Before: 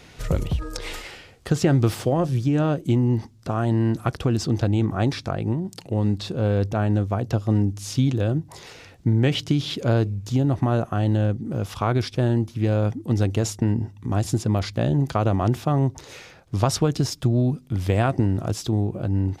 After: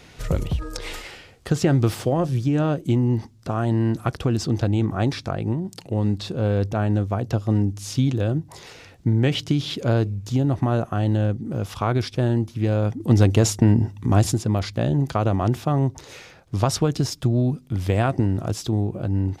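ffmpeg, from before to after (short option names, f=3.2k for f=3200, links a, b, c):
-filter_complex "[0:a]asettb=1/sr,asplit=3[a][b][c];[a]atrim=end=13.004[d];[b]atrim=start=13:end=14.32,asetpts=PTS-STARTPTS,afade=t=in:d=0.004:c=qsin,afade=t=out:st=1.316:d=0.004:c=qsin,acontrast=52[e];[c]atrim=start=14.316[f];[d][e]acrossfade=d=0.004:c1=hsin:c2=qsin[g];[g][f]acrossfade=d=0.004:c1=qsin:c2=hsin"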